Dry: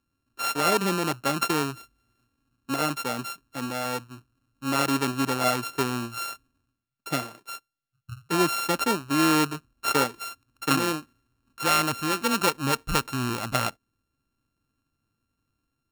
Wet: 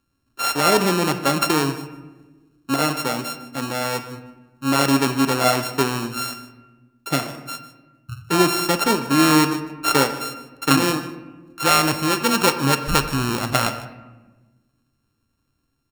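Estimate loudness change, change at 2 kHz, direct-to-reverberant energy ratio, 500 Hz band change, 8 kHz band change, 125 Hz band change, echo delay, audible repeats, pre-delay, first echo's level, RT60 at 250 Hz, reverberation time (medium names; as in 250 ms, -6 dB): +6.0 dB, +5.5 dB, 8.0 dB, +6.5 dB, +6.5 dB, +7.5 dB, 152 ms, 1, 5 ms, -18.0 dB, 1.8 s, 1.2 s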